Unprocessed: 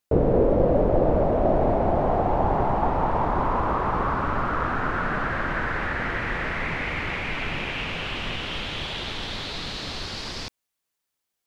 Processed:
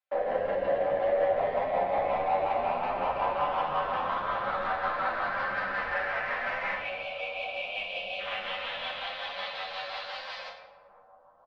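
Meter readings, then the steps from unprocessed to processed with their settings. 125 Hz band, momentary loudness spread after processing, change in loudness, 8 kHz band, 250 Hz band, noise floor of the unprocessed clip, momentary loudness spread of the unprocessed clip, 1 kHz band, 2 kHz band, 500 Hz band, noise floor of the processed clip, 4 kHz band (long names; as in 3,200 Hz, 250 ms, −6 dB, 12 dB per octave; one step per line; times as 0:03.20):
−22.0 dB, 8 LU, −5.5 dB, can't be measured, −18.5 dB, −82 dBFS, 10 LU, −3.5 dB, −3.5 dB, −5.0 dB, −57 dBFS, −5.5 dB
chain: time-frequency box erased 0:06.76–0:08.19, 790–2,200 Hz
Butterworth high-pass 520 Hz 96 dB per octave
comb filter 3.9 ms, depth 45%
in parallel at −2.5 dB: brickwall limiter −21 dBFS, peak gain reduction 9 dB
on the sum: hard clipping −22 dBFS, distortion −10 dB
rotating-speaker cabinet horn 5.5 Hz
high-frequency loss of the air 350 metres
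bucket-brigade delay 499 ms, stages 4,096, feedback 73%, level −17 dB
rectangular room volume 340 cubic metres, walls mixed, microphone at 1.2 metres
barber-pole flanger 10 ms +0.81 Hz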